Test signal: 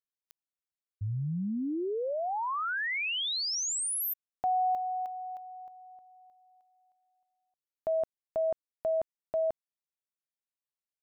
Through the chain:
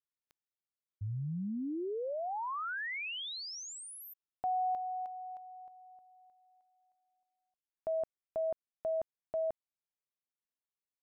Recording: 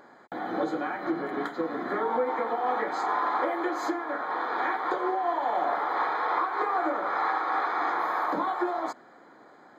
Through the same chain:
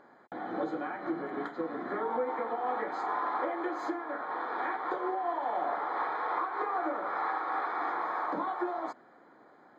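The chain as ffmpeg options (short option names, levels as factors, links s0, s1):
-af "lowpass=f=2600:p=1,volume=0.596"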